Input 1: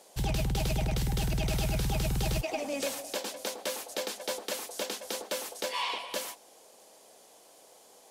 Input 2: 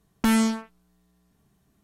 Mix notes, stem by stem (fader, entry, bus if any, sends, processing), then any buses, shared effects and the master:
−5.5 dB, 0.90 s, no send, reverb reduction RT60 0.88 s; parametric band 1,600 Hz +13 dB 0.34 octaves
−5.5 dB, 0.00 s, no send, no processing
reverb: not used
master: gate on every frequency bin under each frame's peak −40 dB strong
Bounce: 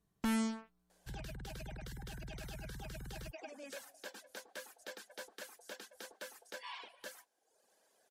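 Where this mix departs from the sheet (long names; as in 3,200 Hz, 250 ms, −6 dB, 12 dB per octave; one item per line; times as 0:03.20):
stem 1 −5.5 dB → −15.0 dB
stem 2 −5.5 dB → −13.0 dB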